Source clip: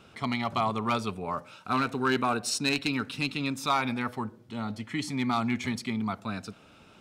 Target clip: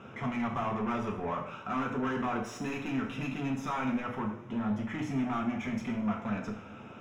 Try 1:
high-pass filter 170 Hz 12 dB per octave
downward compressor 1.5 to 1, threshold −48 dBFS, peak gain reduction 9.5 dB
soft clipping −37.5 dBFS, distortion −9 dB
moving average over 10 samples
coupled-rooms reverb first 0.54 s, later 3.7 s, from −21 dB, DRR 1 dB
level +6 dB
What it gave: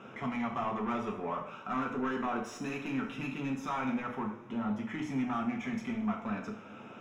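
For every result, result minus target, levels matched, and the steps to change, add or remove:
downward compressor: peak gain reduction +3.5 dB; 125 Hz band −3.5 dB
change: downward compressor 1.5 to 1, threshold −37 dBFS, peak gain reduction 6 dB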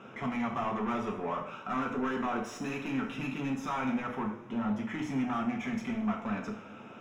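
125 Hz band −3.0 dB
change: high-pass filter 67 Hz 12 dB per octave

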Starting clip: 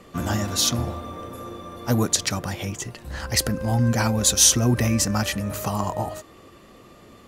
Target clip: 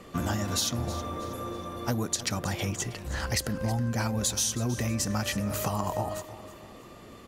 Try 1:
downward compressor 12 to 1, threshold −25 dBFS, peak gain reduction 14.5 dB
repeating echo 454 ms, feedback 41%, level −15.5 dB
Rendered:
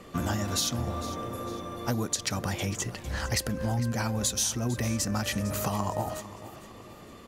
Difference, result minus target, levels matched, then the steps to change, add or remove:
echo 134 ms late
change: repeating echo 320 ms, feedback 41%, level −15.5 dB

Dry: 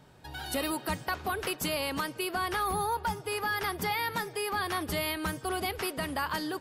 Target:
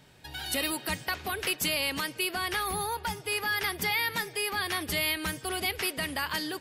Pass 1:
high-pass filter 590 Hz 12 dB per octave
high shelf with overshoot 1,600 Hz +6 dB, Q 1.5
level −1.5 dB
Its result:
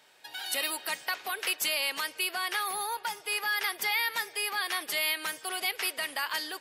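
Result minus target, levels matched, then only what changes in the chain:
500 Hz band −5.0 dB
remove: high-pass filter 590 Hz 12 dB per octave

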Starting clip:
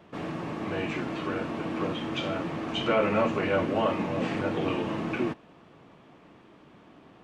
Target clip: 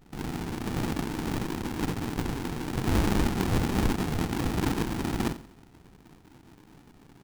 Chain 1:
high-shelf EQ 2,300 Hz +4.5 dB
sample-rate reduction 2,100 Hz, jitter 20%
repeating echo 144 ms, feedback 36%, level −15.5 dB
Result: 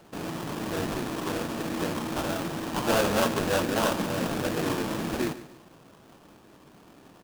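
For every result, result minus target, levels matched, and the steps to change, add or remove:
sample-rate reduction: distortion −27 dB; echo 55 ms late
change: sample-rate reduction 590 Hz, jitter 20%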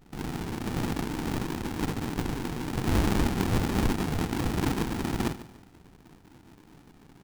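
echo 55 ms late
change: repeating echo 89 ms, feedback 36%, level −15.5 dB

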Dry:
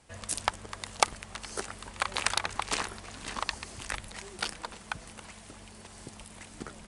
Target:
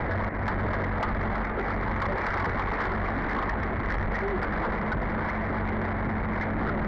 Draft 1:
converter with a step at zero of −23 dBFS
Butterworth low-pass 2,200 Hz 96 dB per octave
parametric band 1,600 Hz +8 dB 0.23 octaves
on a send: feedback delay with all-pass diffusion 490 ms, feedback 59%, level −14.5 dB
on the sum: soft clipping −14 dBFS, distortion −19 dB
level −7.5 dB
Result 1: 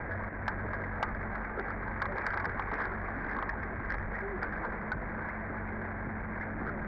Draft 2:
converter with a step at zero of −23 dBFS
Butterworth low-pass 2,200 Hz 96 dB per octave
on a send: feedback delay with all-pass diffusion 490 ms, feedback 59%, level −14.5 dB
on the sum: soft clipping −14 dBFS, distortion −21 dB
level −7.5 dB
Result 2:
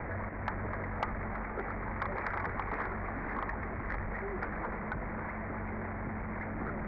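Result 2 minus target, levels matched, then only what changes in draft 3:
converter with a step at zero: distortion −4 dB
change: converter with a step at zero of −11.5 dBFS

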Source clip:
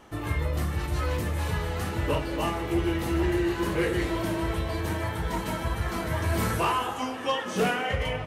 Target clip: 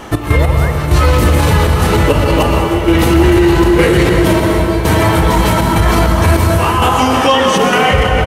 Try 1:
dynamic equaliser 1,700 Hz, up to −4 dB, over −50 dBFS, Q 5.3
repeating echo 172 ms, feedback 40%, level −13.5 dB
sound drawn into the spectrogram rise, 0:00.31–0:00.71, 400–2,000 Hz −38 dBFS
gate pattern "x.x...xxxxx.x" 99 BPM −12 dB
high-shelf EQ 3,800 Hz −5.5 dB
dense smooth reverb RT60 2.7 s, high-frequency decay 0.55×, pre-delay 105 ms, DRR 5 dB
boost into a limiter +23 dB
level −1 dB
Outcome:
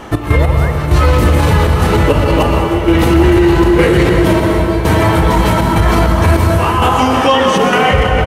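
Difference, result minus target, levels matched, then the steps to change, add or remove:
8,000 Hz band −4.0 dB
remove: high-shelf EQ 3,800 Hz −5.5 dB

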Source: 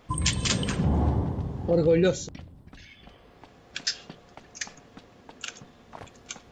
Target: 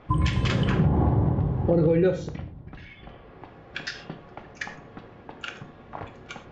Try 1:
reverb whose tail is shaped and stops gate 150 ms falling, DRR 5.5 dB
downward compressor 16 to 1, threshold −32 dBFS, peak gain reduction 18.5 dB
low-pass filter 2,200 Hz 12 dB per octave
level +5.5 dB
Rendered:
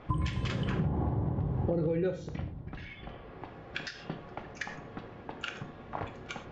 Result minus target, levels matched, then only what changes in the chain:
downward compressor: peak gain reduction +9.5 dB
change: downward compressor 16 to 1, threshold −22 dBFS, peak gain reduction 9 dB

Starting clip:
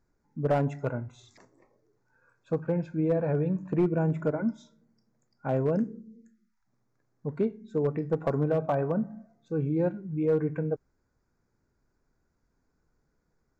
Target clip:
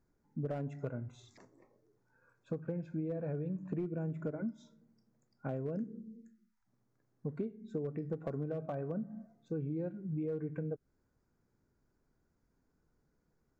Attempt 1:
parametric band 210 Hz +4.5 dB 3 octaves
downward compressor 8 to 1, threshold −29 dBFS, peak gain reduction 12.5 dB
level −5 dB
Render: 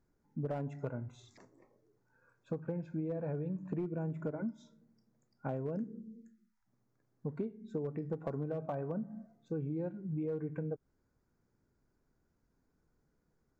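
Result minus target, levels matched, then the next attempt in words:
1,000 Hz band +3.0 dB
parametric band 210 Hz +4.5 dB 3 octaves
downward compressor 8 to 1, threshold −29 dBFS, peak gain reduction 12.5 dB
dynamic equaliser 910 Hz, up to −8 dB, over −58 dBFS, Q 3.3
level −5 dB

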